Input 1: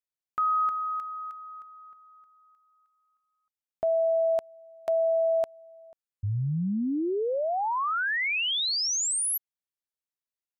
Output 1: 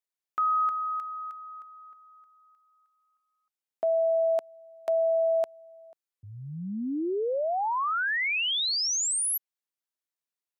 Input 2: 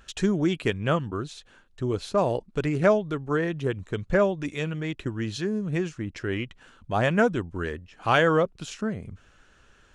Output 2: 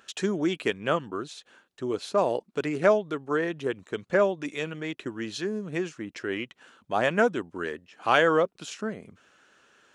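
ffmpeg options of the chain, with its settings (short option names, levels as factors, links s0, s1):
-af "highpass=260"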